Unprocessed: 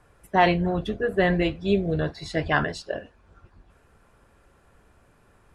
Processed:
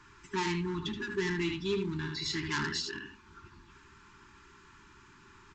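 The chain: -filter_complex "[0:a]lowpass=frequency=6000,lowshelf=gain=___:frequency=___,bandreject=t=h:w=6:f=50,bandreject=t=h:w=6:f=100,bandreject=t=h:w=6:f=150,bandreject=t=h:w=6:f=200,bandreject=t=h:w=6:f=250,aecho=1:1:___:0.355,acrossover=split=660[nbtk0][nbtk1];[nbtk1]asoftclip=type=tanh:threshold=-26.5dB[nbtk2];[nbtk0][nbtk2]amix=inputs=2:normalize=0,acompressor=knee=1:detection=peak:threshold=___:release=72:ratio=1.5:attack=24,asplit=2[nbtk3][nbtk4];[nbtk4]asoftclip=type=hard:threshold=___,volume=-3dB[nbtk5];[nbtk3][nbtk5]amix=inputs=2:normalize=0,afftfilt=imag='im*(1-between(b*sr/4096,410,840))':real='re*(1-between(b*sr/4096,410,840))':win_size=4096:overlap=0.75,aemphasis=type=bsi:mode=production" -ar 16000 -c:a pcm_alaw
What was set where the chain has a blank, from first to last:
5.5, 170, 76, -46dB, -33.5dB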